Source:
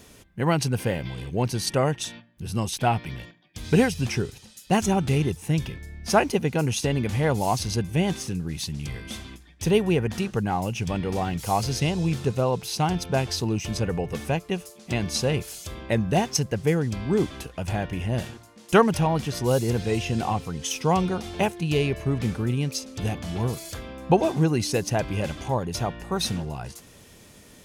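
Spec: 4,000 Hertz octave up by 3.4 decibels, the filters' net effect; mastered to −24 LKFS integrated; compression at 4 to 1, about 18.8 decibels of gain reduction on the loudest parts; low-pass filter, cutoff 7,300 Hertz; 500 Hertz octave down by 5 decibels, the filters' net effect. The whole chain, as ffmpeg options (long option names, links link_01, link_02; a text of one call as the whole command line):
ffmpeg -i in.wav -af "lowpass=7300,equalizer=frequency=500:width_type=o:gain=-6.5,equalizer=frequency=4000:width_type=o:gain=5,acompressor=threshold=-39dB:ratio=4,volume=16.5dB" out.wav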